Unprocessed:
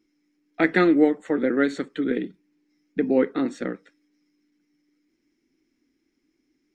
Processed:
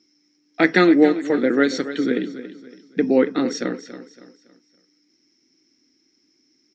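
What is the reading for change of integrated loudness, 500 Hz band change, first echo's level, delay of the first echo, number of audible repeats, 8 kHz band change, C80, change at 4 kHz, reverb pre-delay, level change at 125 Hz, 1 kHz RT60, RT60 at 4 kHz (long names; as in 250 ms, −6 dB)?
+4.0 dB, +4.0 dB, −13.0 dB, 280 ms, 3, can't be measured, no reverb audible, +9.5 dB, no reverb audible, +3.5 dB, no reverb audible, no reverb audible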